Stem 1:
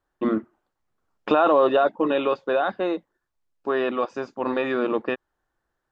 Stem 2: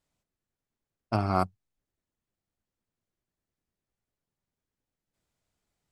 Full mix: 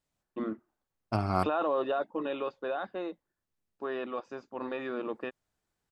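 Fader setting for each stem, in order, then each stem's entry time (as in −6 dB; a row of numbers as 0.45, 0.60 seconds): −11.5, −2.5 decibels; 0.15, 0.00 seconds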